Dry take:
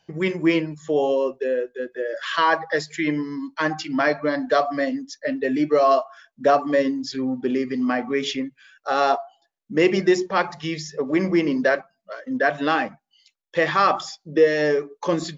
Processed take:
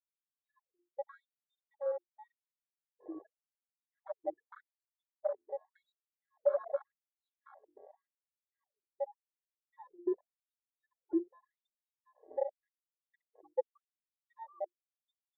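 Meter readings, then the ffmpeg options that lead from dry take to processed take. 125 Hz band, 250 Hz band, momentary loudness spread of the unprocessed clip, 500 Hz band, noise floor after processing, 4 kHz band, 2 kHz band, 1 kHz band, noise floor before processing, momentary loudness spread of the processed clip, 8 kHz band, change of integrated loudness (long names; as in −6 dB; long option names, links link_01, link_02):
below −40 dB, −23.0 dB, 10 LU, −18.0 dB, below −85 dBFS, below −40 dB, below −35 dB, −27.5 dB, −74 dBFS, 18 LU, can't be measured, −17.5 dB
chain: -af "acrusher=bits=3:mix=0:aa=0.000001,highpass=frequency=49:width=0.5412,highpass=frequency=49:width=1.3066,aecho=1:1:3.5:0.73,afftfilt=real='re*gte(hypot(re,im),1.41)':imag='im*gte(hypot(re,im),1.41)':win_size=1024:overlap=0.75,firequalizer=gain_entry='entry(180,0);entry(330,-4);entry(1400,-28);entry(3600,1);entry(6600,-22)':delay=0.05:min_phase=1,afwtdn=0.0316,bandreject=frequency=50:width_type=h:width=6,bandreject=frequency=100:width_type=h:width=6,bandreject=frequency=150:width_type=h:width=6,bandreject=frequency=200:width_type=h:width=6,bandreject=frequency=250:width_type=h:width=6,bandreject=frequency=300:width_type=h:width=6,bandreject=frequency=350:width_type=h:width=6,alimiter=limit=-18.5dB:level=0:latency=1:release=317,equalizer=frequency=1400:width=2.8:gain=2.5,aecho=1:1:724:0.531,afftfilt=real='re*gte(b*sr/1024,330*pow(4200/330,0.5+0.5*sin(2*PI*0.87*pts/sr)))':imag='im*gte(b*sr/1024,330*pow(4200/330,0.5+0.5*sin(2*PI*0.87*pts/sr)))':win_size=1024:overlap=0.75"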